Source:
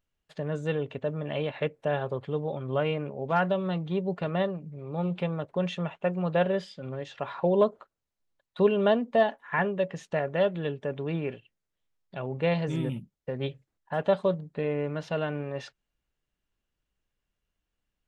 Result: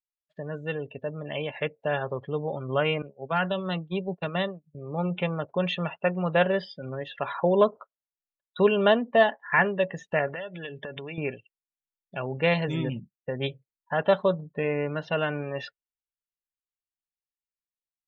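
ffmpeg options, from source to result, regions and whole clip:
-filter_complex "[0:a]asettb=1/sr,asplit=3[a][b][c];[a]atrim=end=3.024[d];[b]atrim=start=3.02:end=4.75,asetpts=PTS-STARTPTS,afade=t=in:d=0.004:c=qsin,afade=t=out:st=1.726:d=0.004:c=qsin,highshelf=f=2.6k:g=3.5,agate=range=-33dB:threshold=-28dB:ratio=3:release=100:detection=peak,acrossover=split=210|3000[e][f][g];[f]acompressor=threshold=-29dB:ratio=2.5:attack=3.2:release=140:knee=2.83:detection=peak[h];[e][h][g]amix=inputs=3:normalize=0[i];[c]atrim=start=4.746[j];[d][i]acrossfade=d=0.004:c1=hsin:c2=qsin[k];[k][j]acrossfade=d=0.004:c1=qsin:c2=hsin,asettb=1/sr,asplit=3[l][m][n];[l]atrim=end=10.274[o];[m]atrim=start=10.27:end=11.18,asetpts=PTS-STARTPTS,afade=t=in:d=0.004:c=qsin,afade=t=out:st=0.906:d=0.004:c=qsin,equalizer=f=2.8k:w=0.32:g=7.5,bandreject=f=50:t=h:w=6,bandreject=f=100:t=h:w=6,bandreject=f=150:t=h:w=6,acompressor=threshold=-35dB:ratio=16:attack=3.2:release=140:knee=1:detection=peak[p];[n]atrim=start=11.176[q];[o][p]acrossfade=d=0.004:c1=hsin:c2=qsin[r];[r][q]acrossfade=d=0.004:c1=qsin:c2=hsin,dynaudnorm=f=300:g=13:m=5dB,afftdn=nr=27:nf=-41,equalizer=f=2.4k:w=0.46:g=8,volume=-4.5dB"

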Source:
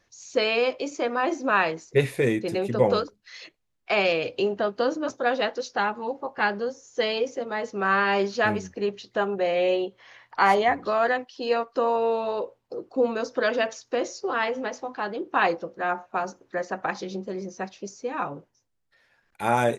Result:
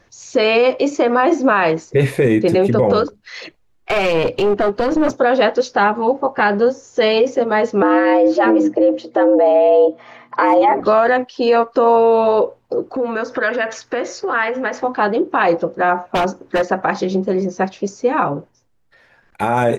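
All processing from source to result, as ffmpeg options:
-filter_complex "[0:a]asettb=1/sr,asplit=3[a][b][c];[a]atrim=end=3.374[d];[b]atrim=start=3.37:end=5.15,asetpts=PTS-STARTPTS,afade=t=in:d=0.004:c=qsin,afade=t=out:st=1.776:d=0.004:c=qsin,acompressor=threshold=-25dB:ratio=2.5:attack=3.2:release=140:knee=1:detection=peak,aphaser=in_gain=1:out_gain=1:delay=2.8:decay=0.36:speed=1.2:type=sinusoidal,aeval=exprs='clip(val(0),-1,0.0316)':c=same[e];[c]atrim=start=5.146[f];[d][e]acrossfade=d=0.004:c1=hsin:c2=qsin[g];[g][f]acrossfade=d=0.004:c1=qsin:c2=hsin,asettb=1/sr,asplit=3[h][i][j];[h]atrim=end=7.824[k];[i]atrim=start=7.82:end=10.8,asetpts=PTS-STARTPTS,afade=t=in:d=0.004:c=qsin,afade=t=out:st=2.976:d=0.004:c=qsin,tiltshelf=f=830:g=7.5,aecho=1:1:5.5:0.51,atrim=end_sample=131418,afreqshift=120[l];[j]atrim=start=10.796[m];[k][l]acrossfade=d=0.004:c1=hsin:c2=qsin[n];[n][m]acrossfade=d=0.004:c1=qsin:c2=hsin,asettb=1/sr,asplit=3[o][p][q];[o]atrim=end=12.914[r];[p]atrim=start=12.91:end=14.84,asetpts=PTS-STARTPTS,afade=t=in:d=0.004:c=qsin,afade=t=out:st=1.926:d=0.004:c=qsin,acompressor=threshold=-36dB:ratio=3:attack=3.2:release=140:knee=1:detection=peak,equalizer=f=1.7k:w=1.1:g=10[s];[q]atrim=start=14.836[t];[r][s]acrossfade=d=0.004:c1=hsin:c2=qsin[u];[u][t]acrossfade=d=0.004:c1=qsin:c2=hsin,asettb=1/sr,asplit=3[v][w][x];[v]atrim=end=16.044[y];[w]atrim=start=16.04:end=16.68,asetpts=PTS-STARTPTS,afade=t=in:d=0.004:c=qsin,afade=t=out:st=0.636:d=0.004:c=qsin,equalizer=f=260:t=o:w=0.99:g=3.5,aeval=exprs='0.0631*(abs(mod(val(0)/0.0631+3,4)-2)-1)':c=same[z];[x]atrim=start=16.676[aa];[y][z]acrossfade=d=0.004:c1=hsin:c2=qsin[ab];[ab][aa]acrossfade=d=0.004:c1=qsin:c2=hsin,highshelf=f=2.3k:g=-9,alimiter=level_in=19.5dB:limit=-1dB:release=50:level=0:latency=1,volume=-4.5dB"

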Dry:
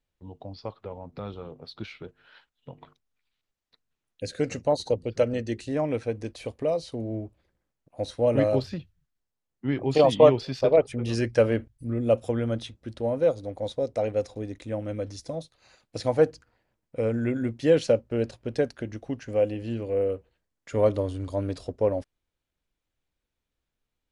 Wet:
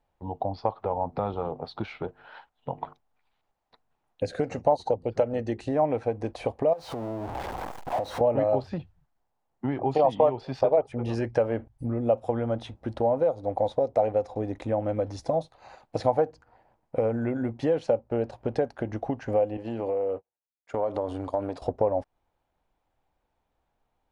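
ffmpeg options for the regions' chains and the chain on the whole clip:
-filter_complex "[0:a]asettb=1/sr,asplit=3[a][b][c];[a]atrim=end=6.734[d];[b]atrim=start=6.73:end=8.21,asetpts=PTS-STARTPTS,afade=t=in:d=0.004:c=qsin,afade=t=out:st=1.476:d=0.004:c=qsin,aeval=exprs='val(0)+0.5*0.0178*sgn(val(0))':c=same,lowshelf=f=330:g=-5,acompressor=threshold=-38dB:ratio=10:attack=3.2:release=140:knee=1:detection=peak[e];[c]atrim=start=8.206[f];[d][e]acrossfade=d=0.004:c1=hsin:c2=qsin[g];[g][f]acrossfade=d=0.004:c1=qsin:c2=hsin,asettb=1/sr,asplit=3[h][i][j];[h]atrim=end=19.574[k];[i]atrim=start=19.57:end=21.62,asetpts=PTS-STARTPTS,afade=t=in:d=0.004:c=qsin,afade=t=out:st=2.046:d=0.004:c=qsin,highpass=f=250:p=1,agate=range=-33dB:threshold=-38dB:ratio=3:release=100:detection=peak,acompressor=threshold=-34dB:ratio=6:attack=3.2:release=140:knee=1:detection=peak[l];[j]atrim=start=21.616[m];[k][l]acrossfade=d=0.004:c1=hsin:c2=qsin[n];[n][m]acrossfade=d=0.004:c1=qsin:c2=hsin,highshelf=f=3k:g=-11.5,acompressor=threshold=-34dB:ratio=4,equalizer=f=810:t=o:w=0.89:g=14.5,volume=6dB"

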